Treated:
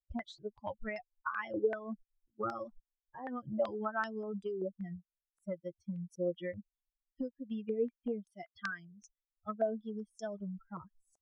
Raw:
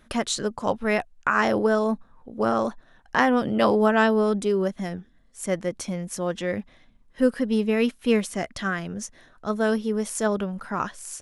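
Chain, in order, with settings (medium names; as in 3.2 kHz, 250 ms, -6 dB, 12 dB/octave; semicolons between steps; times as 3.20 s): expander on every frequency bin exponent 3; 8.30–9.02 s: high-pass 320 Hz 12 dB/octave; compression 12:1, threshold -39 dBFS, peak gain reduction 22.5 dB; step-sequenced low-pass 5.2 Hz 500–5100 Hz; trim +2.5 dB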